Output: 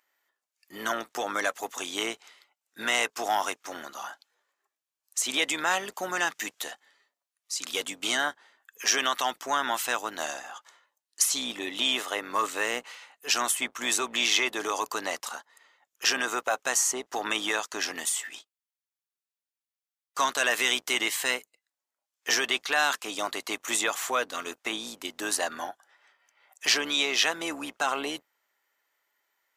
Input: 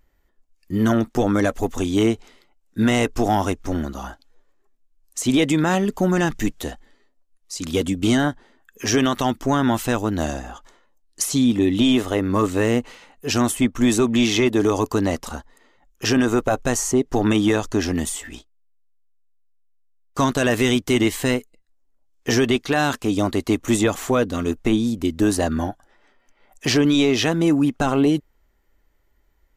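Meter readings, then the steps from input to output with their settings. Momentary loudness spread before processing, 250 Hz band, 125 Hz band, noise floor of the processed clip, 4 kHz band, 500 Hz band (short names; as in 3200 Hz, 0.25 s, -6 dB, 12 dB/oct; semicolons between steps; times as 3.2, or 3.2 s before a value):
10 LU, -21.5 dB, under -30 dB, under -85 dBFS, 0.0 dB, -12.5 dB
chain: octaver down 2 oct, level -3 dB; HPF 970 Hz 12 dB/oct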